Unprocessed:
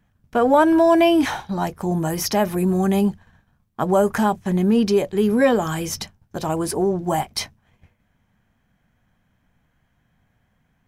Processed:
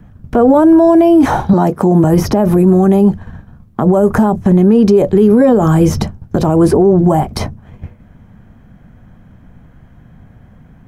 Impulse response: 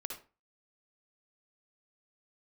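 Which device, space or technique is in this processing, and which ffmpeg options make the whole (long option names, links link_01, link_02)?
mastering chain: -filter_complex "[0:a]asettb=1/sr,asplit=3[link_01][link_02][link_03];[link_01]atrim=end=1.534[link_04];[link_02]atrim=start=1.53:end=2.04,asetpts=PTS-STARTPTS,afade=type=in:duration=0.004:curve=qsin,afade=type=out:start_time=0.506:duration=0.004:curve=qsin,highpass=190[link_05];[link_03]atrim=start=2.036[link_06];[link_04][link_05]acrossfade=duration=0.004:curve1=hsin:curve2=qsin[link_07];[link_07][link_06]acrossfade=duration=0.004:curve1=qsin:curve2=hsin,equalizer=frequency=830:width_type=o:width=0.77:gain=-1.5,equalizer=frequency=1300:width_type=o:width=0.41:gain=2.5,acrossover=split=380|1300|5300[link_08][link_09][link_10][link_11];[link_08]acompressor=threshold=-25dB:ratio=4[link_12];[link_09]acompressor=threshold=-21dB:ratio=4[link_13];[link_10]acompressor=threshold=-40dB:ratio=4[link_14];[link_11]acompressor=threshold=-37dB:ratio=4[link_15];[link_12][link_13][link_14][link_15]amix=inputs=4:normalize=0,acompressor=threshold=-32dB:ratio=1.5,tiltshelf=frequency=1100:gain=8.5,alimiter=level_in=18dB:limit=-1dB:release=50:level=0:latency=1,volume=-1dB"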